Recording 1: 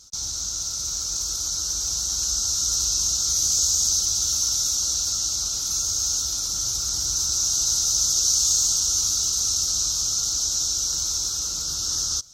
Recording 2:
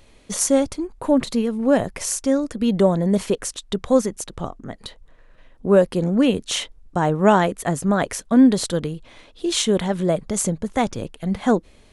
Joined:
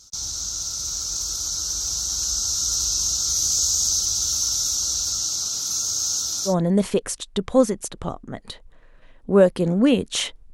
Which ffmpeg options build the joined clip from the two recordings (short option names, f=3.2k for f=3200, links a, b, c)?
-filter_complex "[0:a]asettb=1/sr,asplit=3[a][b][c];[a]atrim=end=5.244[d];[b]atrim=start=5.24:end=6.55,asetpts=PTS-STARTPTS,afade=t=in:d=0.004:c=qsin,afade=t=out:st=1.306:d=0.004:c=qsin,highpass=110[e];[c]atrim=start=6.546[f];[d][e]acrossfade=d=0.004:c1=hsin:c2=qsin[g];[g][f]acrossfade=d=0.004:c1=qsin:c2=hsin,apad=whole_dur=10.53,atrim=end=10.53,atrim=end=6.55,asetpts=PTS-STARTPTS[h];[1:a]atrim=start=2.81:end=6.89,asetpts=PTS-STARTPTS[i];[h][i]acrossfade=d=0.1:c1=tri:c2=tri"